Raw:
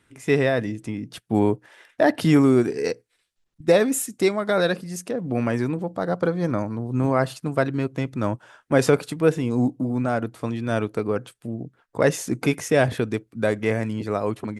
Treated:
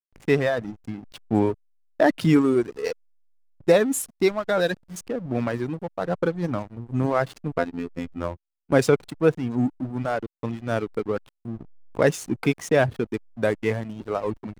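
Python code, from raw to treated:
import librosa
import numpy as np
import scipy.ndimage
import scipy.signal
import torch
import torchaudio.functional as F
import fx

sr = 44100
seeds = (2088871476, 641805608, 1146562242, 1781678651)

y = fx.dereverb_blind(x, sr, rt60_s=1.6)
y = fx.backlash(y, sr, play_db=-31.5)
y = fx.robotise(y, sr, hz=86.1, at=(7.58, 8.72))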